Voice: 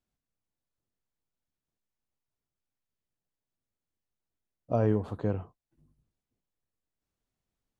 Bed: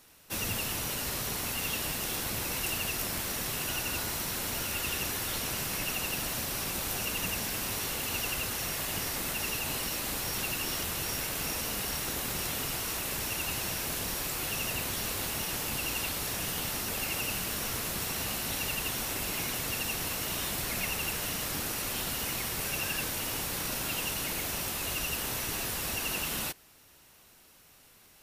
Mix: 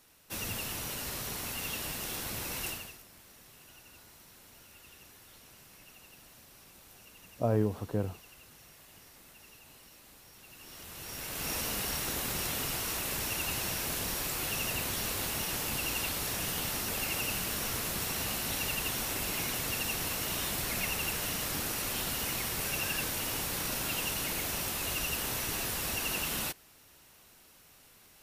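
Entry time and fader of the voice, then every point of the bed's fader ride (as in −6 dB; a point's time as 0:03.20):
2.70 s, −2.0 dB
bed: 0:02.68 −4 dB
0:03.04 −22 dB
0:10.40 −22 dB
0:11.54 −0.5 dB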